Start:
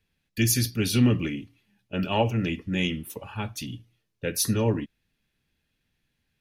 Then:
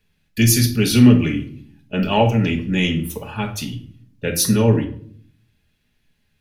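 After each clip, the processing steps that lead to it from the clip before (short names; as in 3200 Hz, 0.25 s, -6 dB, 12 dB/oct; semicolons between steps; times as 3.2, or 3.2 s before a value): shoebox room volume 640 m³, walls furnished, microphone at 1.4 m; gain +6 dB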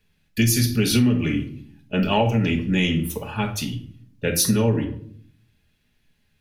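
compressor 6:1, threshold -15 dBFS, peak gain reduction 9.5 dB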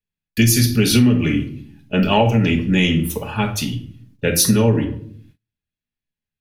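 gate -53 dBFS, range -28 dB; gain +4.5 dB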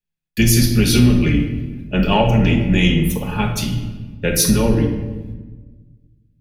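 octaver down 2 oct, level -6 dB; shoebox room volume 1100 m³, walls mixed, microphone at 0.91 m; gain -1 dB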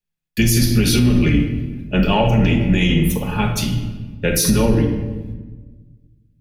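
maximiser +6 dB; gain -5 dB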